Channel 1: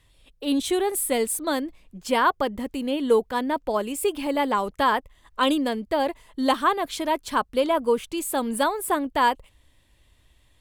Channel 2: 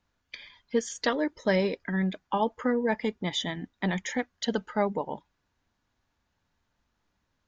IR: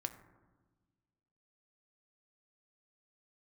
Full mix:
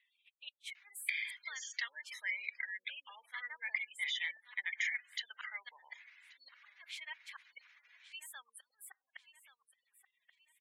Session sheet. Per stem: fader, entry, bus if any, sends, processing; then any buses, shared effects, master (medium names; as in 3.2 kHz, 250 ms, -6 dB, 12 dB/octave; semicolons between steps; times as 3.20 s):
-1.5 dB, 0.00 s, send -16 dB, echo send -14 dB, inverted gate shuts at -14 dBFS, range -39 dB
-0.5 dB, 0.75 s, send -13.5 dB, echo send -23.5 dB, level flattener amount 50%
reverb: on, RT60 1.3 s, pre-delay 4 ms
echo: feedback delay 1130 ms, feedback 38%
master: spectral gate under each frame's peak -25 dB strong; ladder high-pass 2 kHz, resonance 70%; treble shelf 4.3 kHz -10 dB